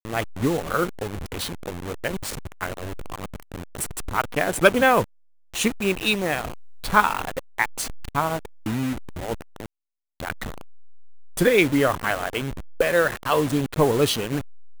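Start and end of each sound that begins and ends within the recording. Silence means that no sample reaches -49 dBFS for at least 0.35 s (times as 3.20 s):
5.54–9.66 s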